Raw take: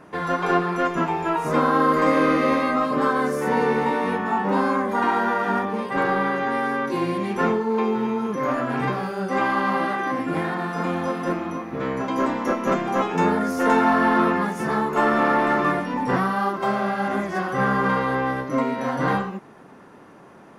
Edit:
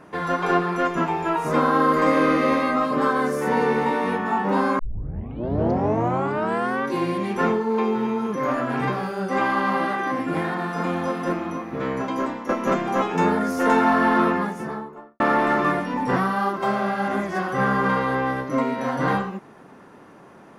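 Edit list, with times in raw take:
0:04.79: tape start 2.06 s
0:12.01–0:12.49: fade out, to −9.5 dB
0:14.22–0:15.20: fade out and dull

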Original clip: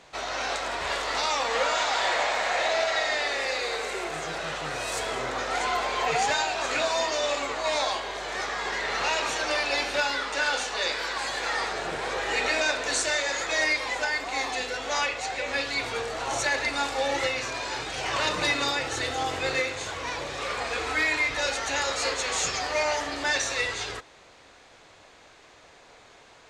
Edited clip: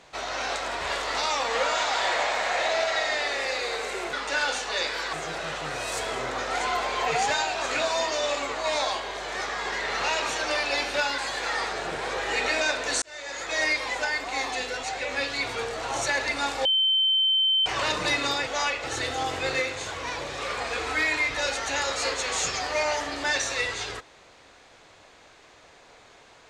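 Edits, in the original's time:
0:10.18–0:11.18: move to 0:04.13
0:13.02–0:13.66: fade in
0:14.83–0:15.20: move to 0:18.84
0:17.02–0:18.03: beep over 3,090 Hz −19 dBFS

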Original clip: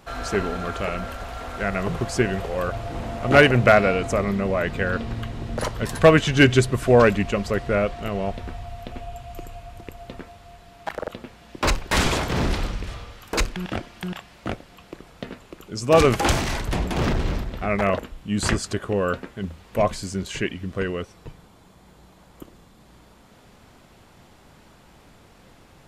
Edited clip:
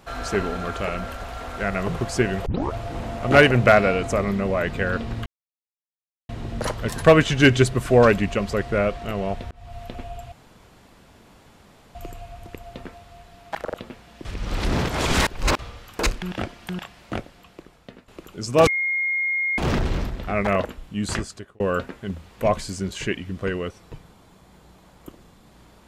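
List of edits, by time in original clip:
0:02.46: tape start 0.28 s
0:05.26: splice in silence 1.03 s
0:08.48–0:08.76: fade in
0:09.29: splice in room tone 1.63 s
0:11.59–0:12.93: reverse
0:14.47–0:15.42: fade out, to −13.5 dB
0:16.01–0:16.92: beep over 2,140 Hz −20.5 dBFS
0:18.19–0:18.94: fade out

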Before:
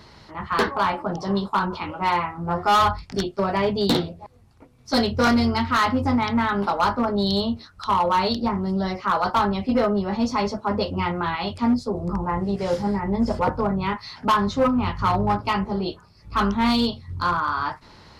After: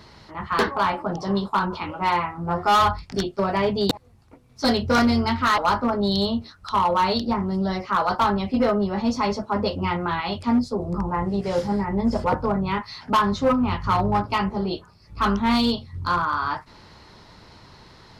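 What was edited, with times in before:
0:03.91–0:04.20: remove
0:05.87–0:06.73: remove

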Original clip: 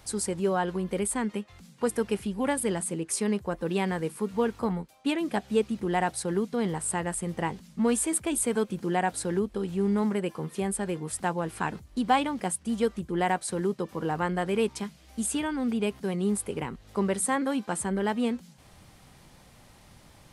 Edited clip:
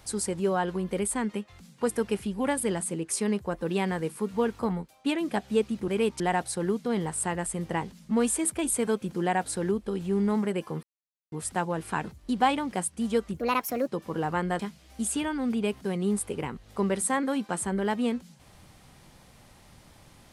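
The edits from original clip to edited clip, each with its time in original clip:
0:10.51–0:11.00: silence
0:13.05–0:13.74: play speed 137%
0:14.46–0:14.78: move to 0:05.88

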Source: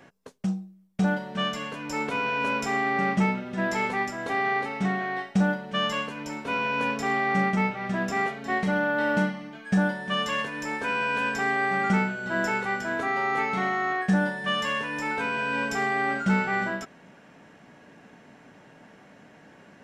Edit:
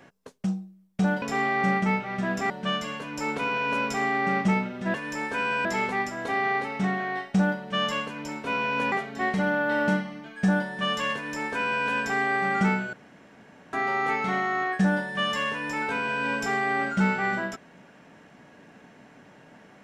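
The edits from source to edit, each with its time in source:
0:06.93–0:08.21: move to 0:01.22
0:10.44–0:11.15: duplicate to 0:03.66
0:12.22–0:13.02: fill with room tone

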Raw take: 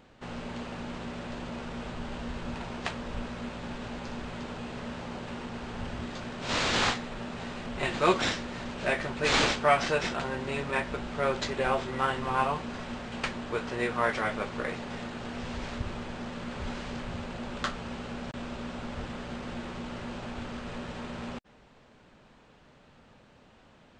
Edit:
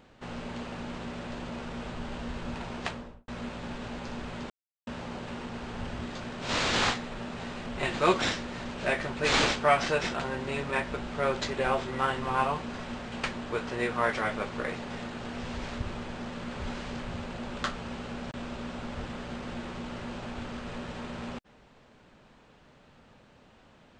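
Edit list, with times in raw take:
0:02.84–0:03.28: fade out and dull
0:04.50–0:04.87: silence

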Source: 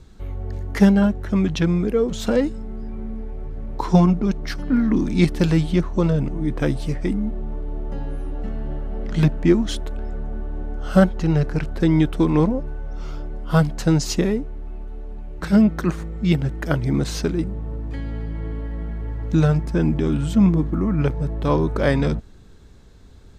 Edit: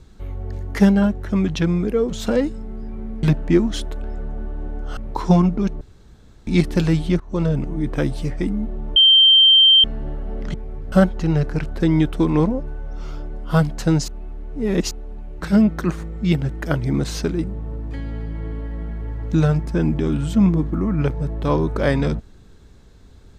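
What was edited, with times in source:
0:03.23–0:03.61: swap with 0:09.18–0:10.92
0:04.45–0:05.11: fill with room tone
0:05.84–0:06.10: fade in, from −21.5 dB
0:07.60–0:08.48: beep over 3,140 Hz −8 dBFS
0:14.08–0:14.91: reverse

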